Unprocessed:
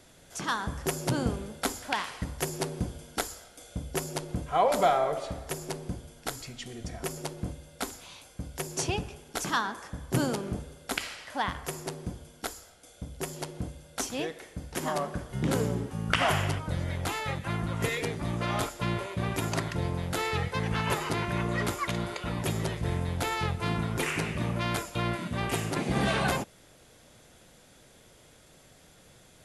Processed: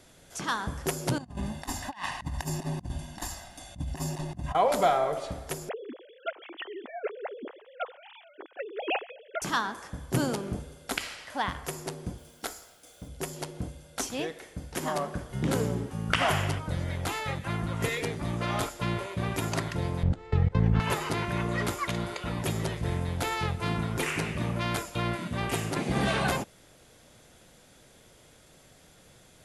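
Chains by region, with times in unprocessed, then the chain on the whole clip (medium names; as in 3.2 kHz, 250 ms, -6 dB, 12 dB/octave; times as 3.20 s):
1.18–4.55 s: treble shelf 5.4 kHz -7.5 dB + comb 1.1 ms, depth 99% + compressor with a negative ratio -34 dBFS, ratio -0.5
5.69–9.42 s: formants replaced by sine waves + high-pass 310 Hz 24 dB/octave + distance through air 97 m
12.18–13.08 s: bass shelf 150 Hz -6.5 dB + de-hum 68.53 Hz, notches 36 + word length cut 10-bit, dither none
20.03–20.80 s: steep low-pass 9.2 kHz 96 dB/octave + tilt EQ -4 dB/octave + level held to a coarse grid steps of 23 dB
whole clip: none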